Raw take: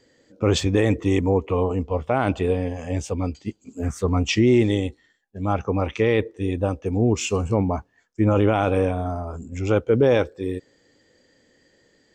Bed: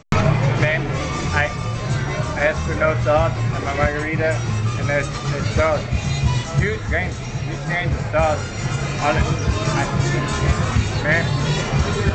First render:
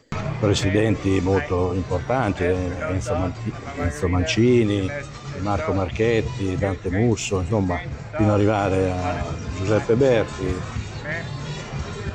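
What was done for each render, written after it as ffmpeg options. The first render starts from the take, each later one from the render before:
-filter_complex "[1:a]volume=0.299[s0];[0:a][s0]amix=inputs=2:normalize=0"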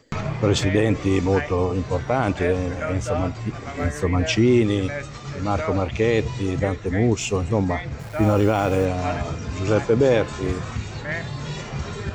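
-filter_complex "[0:a]asplit=3[s0][s1][s2];[s0]afade=t=out:st=7.99:d=0.02[s3];[s1]acrusher=bits=8:dc=4:mix=0:aa=0.000001,afade=t=in:st=7.99:d=0.02,afade=t=out:st=8.84:d=0.02[s4];[s2]afade=t=in:st=8.84:d=0.02[s5];[s3][s4][s5]amix=inputs=3:normalize=0"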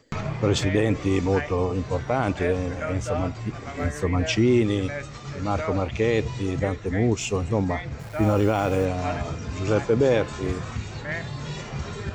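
-af "volume=0.75"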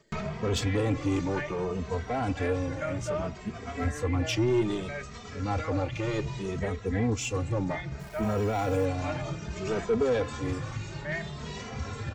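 -filter_complex "[0:a]asoftclip=type=tanh:threshold=0.126,asplit=2[s0][s1];[s1]adelay=2.8,afreqshift=0.63[s2];[s0][s2]amix=inputs=2:normalize=1"

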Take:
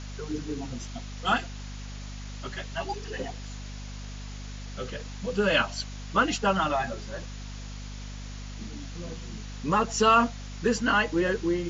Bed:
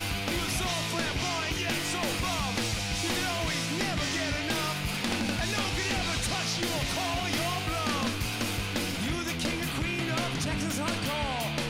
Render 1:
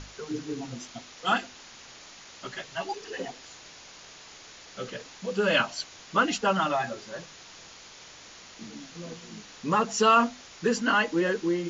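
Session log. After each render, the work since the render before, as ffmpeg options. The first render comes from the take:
-af "bandreject=f=50:t=h:w=6,bandreject=f=100:t=h:w=6,bandreject=f=150:t=h:w=6,bandreject=f=200:t=h:w=6,bandreject=f=250:t=h:w=6"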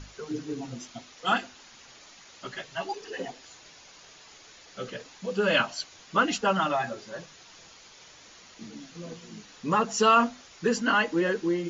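-af "afftdn=nr=6:nf=-49"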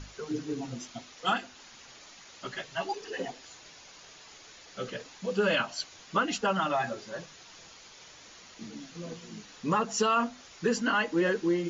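-af "alimiter=limit=0.15:level=0:latency=1:release=288"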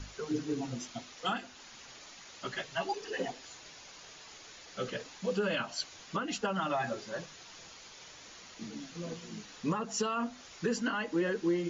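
-filter_complex "[0:a]acrossover=split=380[s0][s1];[s1]acompressor=threshold=0.0398:ratio=4[s2];[s0][s2]amix=inputs=2:normalize=0,alimiter=limit=0.0841:level=0:latency=1:release=479"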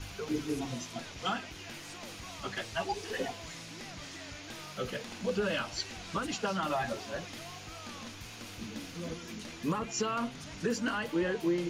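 -filter_complex "[1:a]volume=0.158[s0];[0:a][s0]amix=inputs=2:normalize=0"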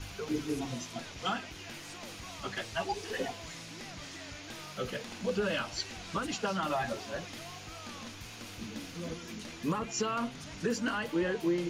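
-af anull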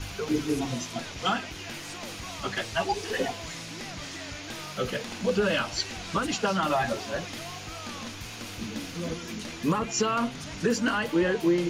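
-af "volume=2.11"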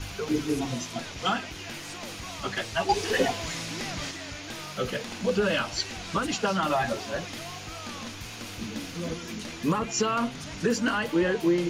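-filter_complex "[0:a]asplit=3[s0][s1][s2];[s0]atrim=end=2.892[s3];[s1]atrim=start=2.888:end=4.112,asetpts=PTS-STARTPTS,volume=1.68[s4];[s2]atrim=start=4.108[s5];[s3][s4]acrossfade=d=0.004:c1=hsin:c2=hsin[s6];[s6][s5]acrossfade=d=0.004:c1=hsin:c2=hsin"

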